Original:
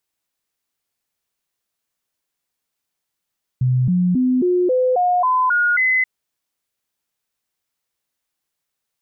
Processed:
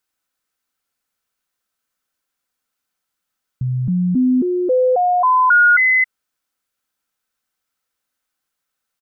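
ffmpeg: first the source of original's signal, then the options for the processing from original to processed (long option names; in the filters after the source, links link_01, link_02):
-f lavfi -i "aevalsrc='0.211*clip(min(mod(t,0.27),0.27-mod(t,0.27))/0.005,0,1)*sin(2*PI*127*pow(2,floor(t/0.27)/2)*mod(t,0.27))':duration=2.43:sample_rate=44100"
-af "equalizer=frequency=1400:width_type=o:width=0.35:gain=9,aecho=1:1:3.9:0.31"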